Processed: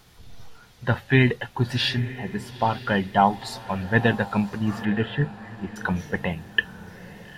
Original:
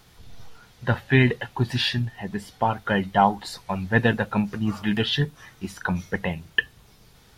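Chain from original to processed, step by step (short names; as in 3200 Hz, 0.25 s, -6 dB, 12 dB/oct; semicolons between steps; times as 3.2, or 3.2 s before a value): 4.85–5.76 LPF 2200 Hz 24 dB/oct; diffused feedback echo 0.906 s, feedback 47%, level -16 dB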